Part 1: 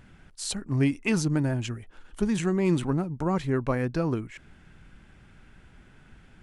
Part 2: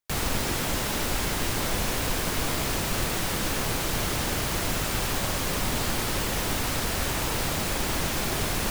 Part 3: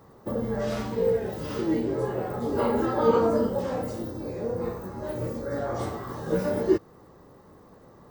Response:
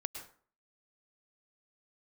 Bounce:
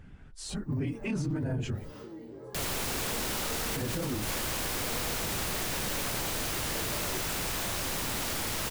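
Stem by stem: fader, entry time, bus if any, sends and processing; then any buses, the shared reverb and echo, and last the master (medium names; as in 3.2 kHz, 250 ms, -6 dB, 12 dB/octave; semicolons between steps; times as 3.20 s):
-2.5 dB, 0.00 s, muted 1.94–3.76 s, no send, phase randomisation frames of 50 ms; de-esser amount 60%; tilt EQ -1.5 dB/octave
-0.5 dB, 2.45 s, no send, wavefolder -27.5 dBFS
-11.0 dB, 0.45 s, no send, compression 6:1, threshold -31 dBFS, peak gain reduction 15 dB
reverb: none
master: peak limiter -24.5 dBFS, peak gain reduction 12 dB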